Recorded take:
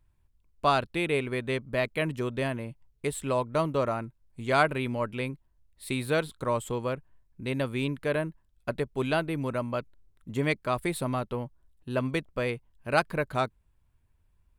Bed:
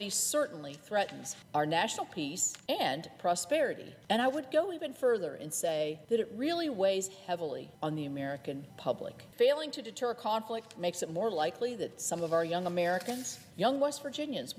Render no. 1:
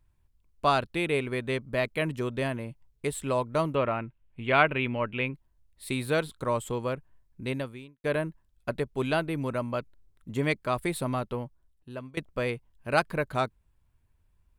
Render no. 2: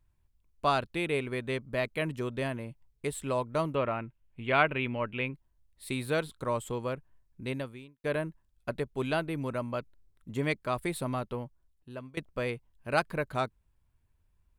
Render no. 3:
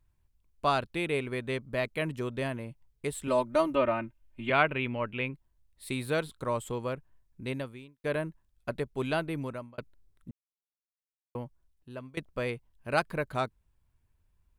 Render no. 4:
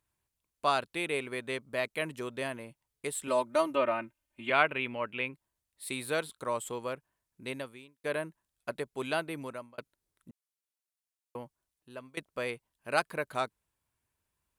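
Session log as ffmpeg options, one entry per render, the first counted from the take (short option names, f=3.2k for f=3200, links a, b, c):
-filter_complex "[0:a]asplit=3[a][b][c];[a]afade=t=out:st=3.74:d=0.02[d];[b]highshelf=f=4.1k:t=q:w=3:g=-13.5,afade=t=in:st=3.74:d=0.02,afade=t=out:st=5.33:d=0.02[e];[c]afade=t=in:st=5.33:d=0.02[f];[d][e][f]amix=inputs=3:normalize=0,asplit=3[g][h][i];[g]atrim=end=8.04,asetpts=PTS-STARTPTS,afade=t=out:st=7.5:d=0.54:c=qua[j];[h]atrim=start=8.04:end=12.17,asetpts=PTS-STARTPTS,afade=t=in:d=0.004:c=hsin,afade=t=out:st=3.28:d=0.85:silence=0.1[k];[i]atrim=start=12.17,asetpts=PTS-STARTPTS,afade=t=in:d=0.004:c=hsin:silence=0.1[l];[j][k][l]concat=n=3:v=0:a=1"
-af "volume=-3dB"
-filter_complex "[0:a]asettb=1/sr,asplit=3[a][b][c];[a]atrim=end=3.274[d];[b]atrim=start=3.27:end=4.5,asetpts=PTS-STARTPTS,afade=t=in:d=0.004:c=qsin,afade=t=out:st=1.226:d=0.004:c=qsin,aecho=1:1:3.3:0.99,atrim=end_sample=54243[e];[c]atrim=start=4.496[f];[d][e]acrossfade=d=0.004:c1=hsin:c2=qsin[g];[g][f]acrossfade=d=0.004:c1=qsin:c2=hsin,asplit=4[h][i][j][k];[h]atrim=end=9.78,asetpts=PTS-STARTPTS,afade=t=out:st=9.38:d=0.4[l];[i]atrim=start=9.78:end=10.31,asetpts=PTS-STARTPTS,afade=t=in:d=0.004:c=hsin,afade=t=out:st=0.526:d=0.004:c=hsin[m];[j]atrim=start=10.31:end=11.35,asetpts=PTS-STARTPTS,volume=0[n];[k]atrim=start=11.35,asetpts=PTS-STARTPTS,afade=t=in:d=0.004:c=hsin[o];[l][m][n][o]concat=n=4:v=0:a=1"
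-af "highpass=f=420:p=1,equalizer=f=9.8k:w=0.83:g=5"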